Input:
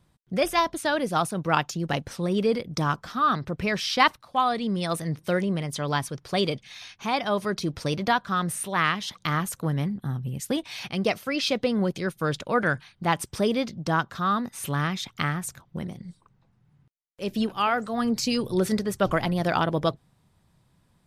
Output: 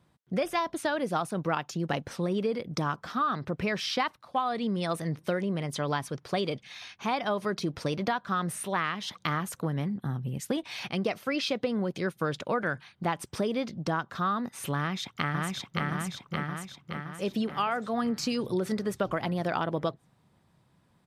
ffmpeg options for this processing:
-filter_complex "[0:a]asplit=2[s0][s1];[s1]afade=t=in:st=14.77:d=0.01,afade=t=out:st=15.86:d=0.01,aecho=0:1:570|1140|1710|2280|2850|3420|3990|4560:0.841395|0.462767|0.254522|0.139987|0.0769929|0.0423461|0.0232904|0.0128097[s2];[s0][s2]amix=inputs=2:normalize=0,acompressor=threshold=0.0562:ratio=12,highpass=f=150:p=1,highshelf=f=3800:g=-7.5,volume=1.19"

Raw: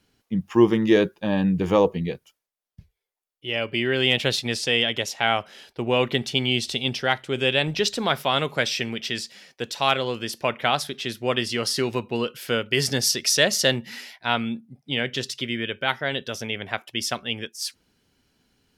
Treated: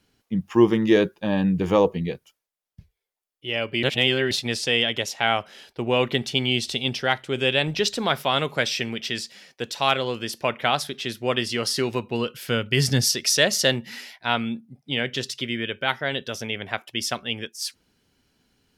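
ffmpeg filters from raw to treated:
-filter_complex "[0:a]asettb=1/sr,asplit=3[s0][s1][s2];[s0]atrim=end=12.004[s3];[s1]atrim=start=12:end=13.05,asetpts=PTS-STARTPTS,afade=t=in:d=0.004:c=qsin,afade=t=out:st=1.046:d=0.004:c=qsin,asubboost=boost=8:cutoff=240[s4];[s2]atrim=start=13.046[s5];[s3][s4]acrossfade=d=0.004:c1=hsin:c2=qsin[s6];[s6][s5]acrossfade=d=0.004:c1=qsin:c2=hsin,asplit=3[s7][s8][s9];[s7]atrim=end=3.832[s10];[s8]atrim=start=3.828:end=4.312,asetpts=PTS-STARTPTS,areverse[s11];[s9]atrim=start=4.308[s12];[s10][s11]acrossfade=d=0.004:c1=hsin:c2=hsin[s13];[s13][s12]acrossfade=d=0.004:c1=hsin:c2=hsin"

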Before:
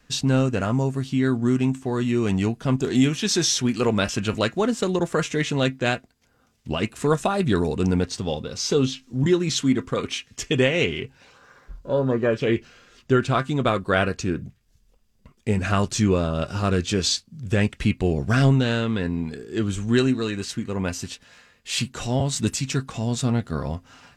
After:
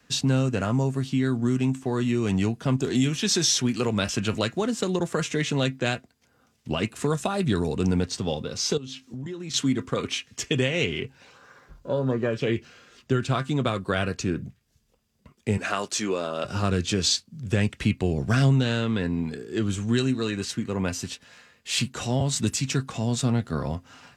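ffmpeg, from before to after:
-filter_complex "[0:a]asettb=1/sr,asplit=3[s0][s1][s2];[s0]atrim=end=8.774[s3];[s1]atrim=start=8.77:end=9.54,asetpts=PTS-STARTPTS,afade=t=in:d=0.004:c=qsin,afade=t=out:st=0.766:d=0.004:c=qsin,acompressor=threshold=0.0282:ratio=12:attack=3.2:release=140:knee=1:detection=peak[s4];[s2]atrim=start=9.536[s5];[s3][s4]acrossfade=d=0.004:c1=hsin:c2=qsin[s6];[s6][s5]acrossfade=d=0.004:c1=qsin:c2=hsin,asettb=1/sr,asplit=3[s7][s8][s9];[s7]atrim=end=15.574[s10];[s8]atrim=start=15.57:end=16.44,asetpts=PTS-STARTPTS,afade=t=in:d=0.004:c=qsin,afade=t=out:st=0.866:d=0.004:c=qsin,highpass=380[s11];[s9]atrim=start=16.436[s12];[s10][s11]acrossfade=d=0.004:c1=hsin:c2=qsin[s13];[s13][s12]acrossfade=d=0.004:c1=qsin:c2=hsin,highpass=76,acrossover=split=170|3000[s14][s15][s16];[s15]acompressor=threshold=0.0708:ratio=6[s17];[s14][s17][s16]amix=inputs=3:normalize=0"

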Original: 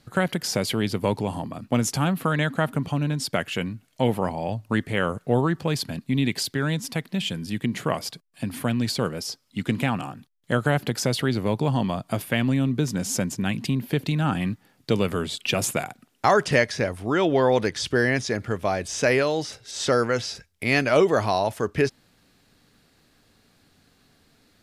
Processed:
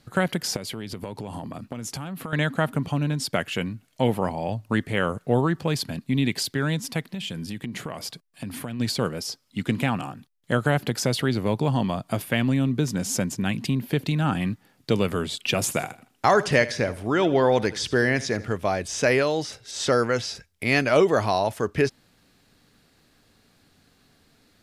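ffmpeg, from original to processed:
-filter_complex "[0:a]asettb=1/sr,asplit=3[s0][s1][s2];[s0]atrim=end=0.564[s3];[s1]atrim=start=0.56:end=2.33,asetpts=PTS-STARTPTS,afade=t=in:d=0.004:c=qsin,afade=t=out:st=1.766:d=0.004:c=qsin,acompressor=threshold=0.0355:ratio=10:attack=3.2:release=140:knee=1:detection=peak[s4];[s2]atrim=start=2.326[s5];[s3][s4]acrossfade=d=0.004:c1=hsin:c2=qsin[s6];[s6][s5]acrossfade=d=0.004:c1=qsin:c2=hsin,asplit=3[s7][s8][s9];[s7]afade=t=out:st=7.1:d=0.02[s10];[s8]acompressor=threshold=0.0398:ratio=6:attack=3.2:release=140:knee=1:detection=peak,afade=t=in:st=7.1:d=0.02,afade=t=out:st=8.79:d=0.02[s11];[s9]afade=t=in:st=8.79:d=0.02[s12];[s10][s11][s12]amix=inputs=3:normalize=0,asettb=1/sr,asplit=3[s13][s14][s15];[s13]atrim=end=15.624[s16];[s14]atrim=start=15.62:end=18.54,asetpts=PTS-STARTPTS,afade=t=in:d=0.004:c=qsin,afade=t=out:st=2.916:d=0.004:c=qsin,aecho=1:1:80|160|240:0.141|0.048|0.0163,atrim=end_sample=128772[s17];[s15]atrim=start=18.536[s18];[s16][s17]acrossfade=d=0.004:c1=hsin:c2=qsin[s19];[s19][s18]acrossfade=d=0.004:c1=qsin:c2=hsin"

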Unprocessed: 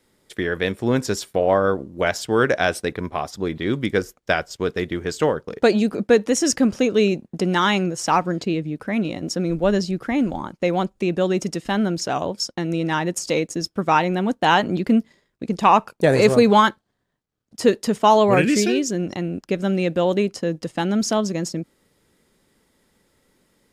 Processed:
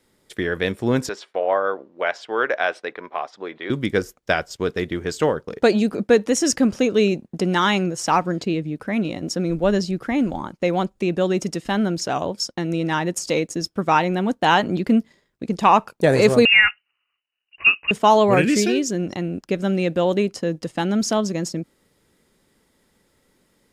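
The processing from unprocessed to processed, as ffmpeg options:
-filter_complex "[0:a]asettb=1/sr,asplit=3[s0][s1][s2];[s0]atrim=end=1.094[s3];[s1]atrim=start=1.09:end=3.7,asetpts=PTS-STARTPTS,afade=t=in:d=0.004:c=qsin,afade=t=out:st=2.606:d=0.004:c=qsin,highpass=540,lowpass=2900[s4];[s2]atrim=start=3.696[s5];[s3][s4]acrossfade=d=0.004:c1=hsin:c2=qsin[s6];[s6][s5]acrossfade=d=0.004:c1=qsin:c2=hsin,asettb=1/sr,asplit=3[s7][s8][s9];[s7]atrim=end=16.454[s10];[s8]atrim=start=16.45:end=17.91,asetpts=PTS-STARTPTS,afade=t=in:d=0.004:c=qsin,afade=t=out:st=1.456:d=0.004:c=qsin,lowpass=f=2600:t=q:w=0.5098,lowpass=f=2600:t=q:w=0.6013,lowpass=f=2600:t=q:w=0.9,lowpass=f=2600:t=q:w=2.563,afreqshift=-3000[s11];[s9]atrim=start=17.906[s12];[s10][s11]acrossfade=d=0.004:c1=hsin:c2=qsin[s13];[s13][s12]acrossfade=d=0.004:c1=qsin:c2=hsin"

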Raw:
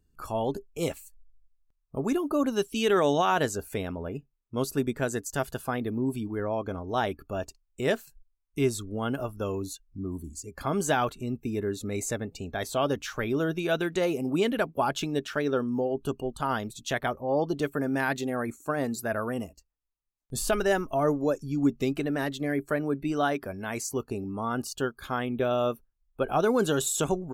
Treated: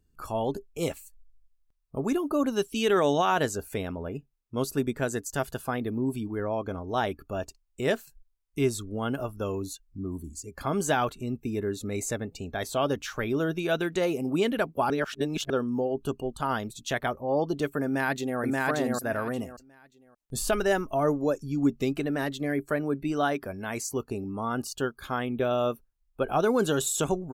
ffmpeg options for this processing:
-filter_complex "[0:a]asplit=2[s0][s1];[s1]afade=t=in:st=17.85:d=0.01,afade=t=out:st=18.4:d=0.01,aecho=0:1:580|1160|1740:0.944061|0.188812|0.0377624[s2];[s0][s2]amix=inputs=2:normalize=0,asplit=3[s3][s4][s5];[s3]atrim=end=14.902[s6];[s4]atrim=start=14.898:end=15.502,asetpts=PTS-STARTPTS,areverse[s7];[s5]atrim=start=15.498[s8];[s6][s7]acrossfade=d=0.004:c1=hsin:c2=hsin[s9];[s9][s8]acrossfade=d=0.004:c1=hsin:c2=hsin"

